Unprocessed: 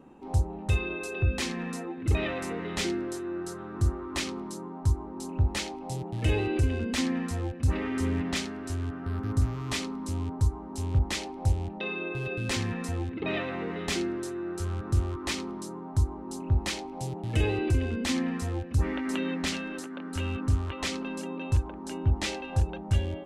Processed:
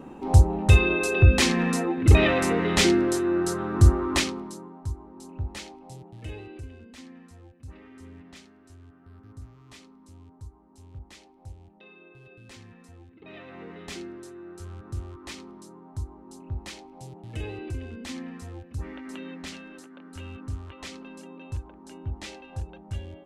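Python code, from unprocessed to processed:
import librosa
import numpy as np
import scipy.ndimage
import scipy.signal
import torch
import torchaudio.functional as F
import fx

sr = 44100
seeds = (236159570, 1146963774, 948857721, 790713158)

y = fx.gain(x, sr, db=fx.line((4.12, 10.0), (4.32, 2.5), (4.86, -7.0), (5.69, -7.0), (6.93, -18.0), (13.17, -18.0), (13.61, -8.5)))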